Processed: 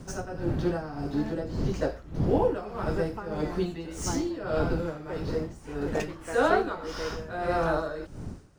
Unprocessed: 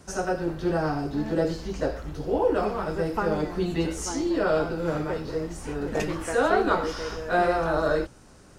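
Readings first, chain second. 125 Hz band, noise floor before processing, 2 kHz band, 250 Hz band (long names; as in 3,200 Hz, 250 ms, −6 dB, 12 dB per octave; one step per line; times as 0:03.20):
+0.5 dB, −51 dBFS, −4.5 dB, −2.5 dB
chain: running median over 3 samples
wind on the microphone 190 Hz −33 dBFS
amplitude tremolo 1.7 Hz, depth 77%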